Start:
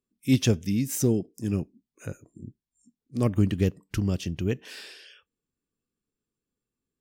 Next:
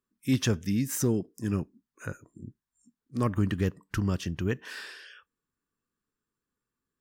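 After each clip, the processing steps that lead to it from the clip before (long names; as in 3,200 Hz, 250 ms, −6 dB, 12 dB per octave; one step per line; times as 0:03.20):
flat-topped bell 1,300 Hz +9 dB 1.2 octaves
in parallel at +2.5 dB: brickwall limiter −17 dBFS, peak gain reduction 7 dB
on the sum: level −9 dB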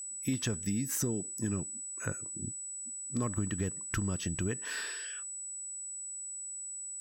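downward compressor 6 to 1, threshold −32 dBFS, peak gain reduction 12 dB
steady tone 7,900 Hz −41 dBFS
level +2 dB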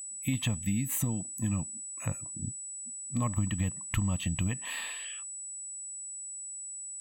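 phaser with its sweep stopped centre 1,500 Hz, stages 6
level +6 dB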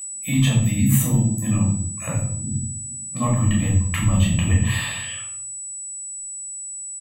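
multiband delay without the direct sound highs, lows 80 ms, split 160 Hz
convolution reverb RT60 0.65 s, pre-delay 11 ms, DRR −3.5 dB
level +3.5 dB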